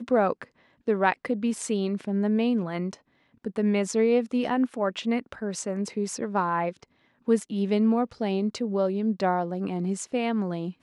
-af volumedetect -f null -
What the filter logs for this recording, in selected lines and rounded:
mean_volume: -26.6 dB
max_volume: -6.8 dB